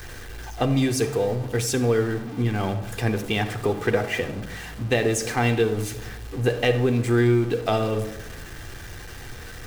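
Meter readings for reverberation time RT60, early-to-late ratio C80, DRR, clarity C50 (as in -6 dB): 1.0 s, 13.5 dB, 4.0 dB, 11.0 dB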